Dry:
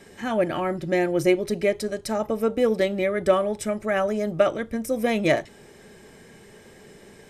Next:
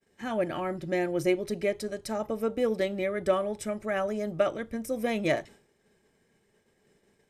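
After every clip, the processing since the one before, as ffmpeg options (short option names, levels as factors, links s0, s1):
-af "agate=range=0.0224:threshold=0.0126:ratio=3:detection=peak,volume=0.501"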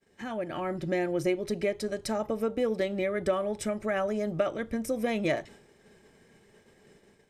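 -af "acompressor=threshold=0.00708:ratio=2,highshelf=f=12000:g=-9.5,dynaudnorm=f=240:g=5:m=2.11,volume=1.41"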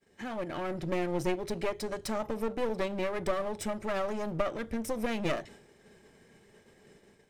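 -af "aeval=exprs='clip(val(0),-1,0.0133)':c=same"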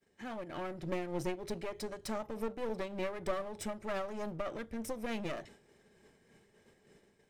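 -af "tremolo=f=3.3:d=0.44,volume=0.631"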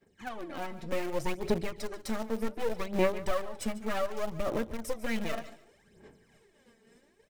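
-filter_complex "[0:a]aphaser=in_gain=1:out_gain=1:delay=4.5:decay=0.68:speed=0.66:type=sinusoidal,asplit=2[s0][s1];[s1]acrusher=bits=4:mix=0:aa=0.000001,volume=0.251[s2];[s0][s2]amix=inputs=2:normalize=0,aecho=1:1:145|290:0.158|0.0396"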